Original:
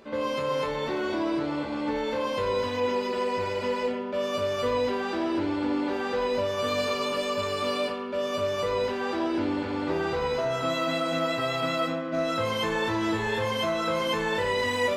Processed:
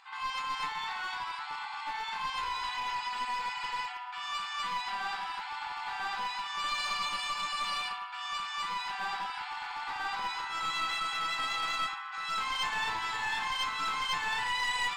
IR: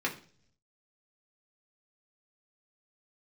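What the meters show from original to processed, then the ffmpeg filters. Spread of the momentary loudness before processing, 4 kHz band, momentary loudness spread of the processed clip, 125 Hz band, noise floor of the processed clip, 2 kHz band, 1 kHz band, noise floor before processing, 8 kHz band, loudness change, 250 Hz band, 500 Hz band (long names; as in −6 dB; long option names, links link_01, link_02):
3 LU, −1.0 dB, 6 LU, below −20 dB, −41 dBFS, −1.0 dB, −1.5 dB, −32 dBFS, −1.5 dB, −5.5 dB, −28.0 dB, −29.5 dB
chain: -filter_complex "[0:a]afftfilt=real='re*between(b*sr/4096,740,9400)':imag='im*between(b*sr/4096,740,9400)':win_size=4096:overlap=0.75,acrossover=split=4200[link_01][link_02];[link_01]aeval=exprs='clip(val(0),-1,0.0211)':channel_layout=same[link_03];[link_02]bandreject=frequency=6000:width=6.5[link_04];[link_03][link_04]amix=inputs=2:normalize=0"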